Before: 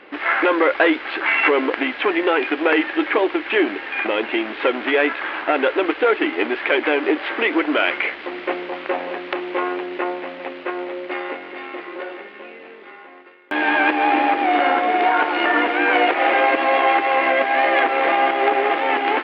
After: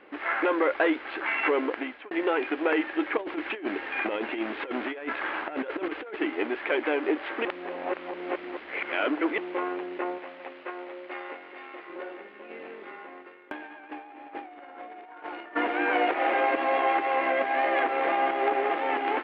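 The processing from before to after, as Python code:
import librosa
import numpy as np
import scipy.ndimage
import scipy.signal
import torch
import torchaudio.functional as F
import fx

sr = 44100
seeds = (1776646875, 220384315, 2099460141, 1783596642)

y = fx.over_compress(x, sr, threshold_db=-22.0, ratio=-0.5, at=(3.17, 6.16))
y = fx.low_shelf(y, sr, hz=390.0, db=-10.5, at=(10.18, 11.9))
y = fx.over_compress(y, sr, threshold_db=-26.0, ratio=-0.5, at=(12.49, 15.55), fade=0.02)
y = fx.edit(y, sr, fx.fade_out_span(start_s=1.55, length_s=0.56, curve='qsin'),
    fx.reverse_span(start_s=7.45, length_s=1.93), tone=tone)
y = fx.high_shelf(y, sr, hz=2800.0, db=-9.0)
y = y * 10.0 ** (-7.0 / 20.0)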